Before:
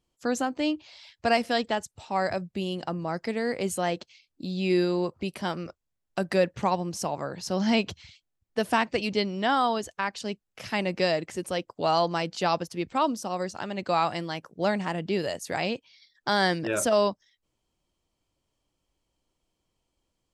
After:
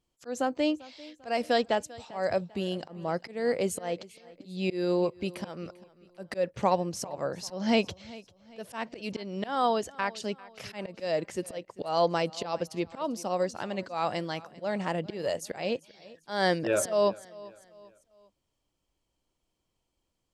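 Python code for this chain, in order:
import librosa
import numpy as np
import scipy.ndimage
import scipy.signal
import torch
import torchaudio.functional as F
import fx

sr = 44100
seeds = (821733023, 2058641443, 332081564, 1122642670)

y = fx.dynamic_eq(x, sr, hz=530.0, q=2.1, threshold_db=-40.0, ratio=4.0, max_db=7)
y = fx.auto_swell(y, sr, attack_ms=216.0)
y = fx.echo_feedback(y, sr, ms=395, feedback_pct=40, wet_db=-20.5)
y = y * librosa.db_to_amplitude(-2.0)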